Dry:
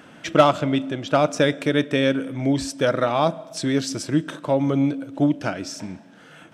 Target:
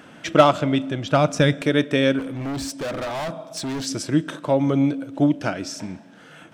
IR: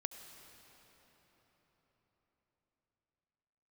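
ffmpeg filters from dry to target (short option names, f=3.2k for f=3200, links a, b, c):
-filter_complex "[0:a]asettb=1/sr,asplit=3[a][b][c];[a]atrim=end=0.664[d];[b]atrim=start=0.66:end=1.62,asetpts=PTS-STARTPTS,afade=t=in:d=0.004:c=qsin,afade=t=out:st=0.956:d=0.004:c=qsin,asubboost=boost=11.5:cutoff=180[e];[c]atrim=start=1.616[f];[d][e]acrossfade=d=0.004:c1=hsin:c2=qsin[g];[g][f]acrossfade=d=0.004:c1=qsin:c2=hsin,asettb=1/sr,asplit=3[h][i][j];[h]atrim=end=2.194[k];[i]atrim=start=2.19:end=3.86,asetpts=PTS-STARTPTS,afade=t=in:d=0.004:c=qsin,afade=t=out:st=1.666:d=0.004:c=qsin,volume=26.5dB,asoftclip=hard,volume=-26.5dB[l];[j]atrim=start=3.856[m];[k][l]acrossfade=d=0.004:c1=hsin:c2=qsin[n];[n][m]acrossfade=d=0.004:c1=qsin:c2=hsin,volume=1dB"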